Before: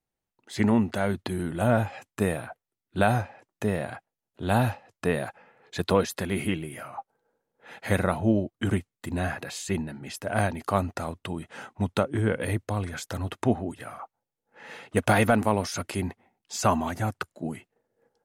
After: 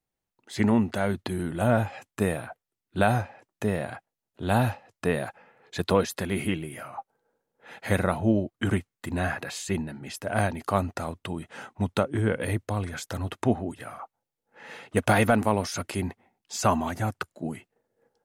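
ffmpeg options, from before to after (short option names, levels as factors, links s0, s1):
-filter_complex "[0:a]asettb=1/sr,asplit=3[s0][s1][s2];[s0]atrim=end=8.484[s3];[s1]atrim=start=8.48:end=9.65,asetpts=PTS-STARTPTS,afade=t=in:d=0.004:c=qsin,afade=t=out:st=1.166:d=0.004:c=qsin,equalizer=f=1400:t=o:w=1.9:g=3[s4];[s2]atrim=start=9.646[s5];[s3][s4]acrossfade=d=0.004:c1=hsin:c2=qsin[s6];[s6][s5]acrossfade=d=0.004:c1=qsin:c2=hsin"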